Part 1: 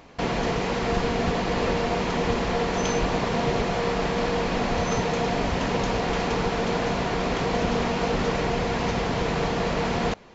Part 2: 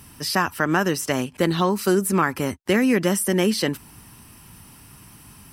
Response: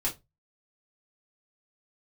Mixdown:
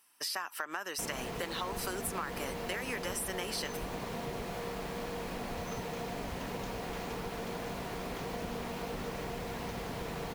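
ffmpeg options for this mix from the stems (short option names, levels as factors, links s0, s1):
-filter_complex "[0:a]acrusher=bits=5:mix=0:aa=0.000001,adelay=800,volume=0.299[s0];[1:a]agate=range=0.158:threshold=0.0126:ratio=16:detection=peak,highpass=710,acompressor=threshold=0.0501:ratio=4,volume=0.841[s1];[s0][s1]amix=inputs=2:normalize=0,acompressor=threshold=0.0126:ratio=2"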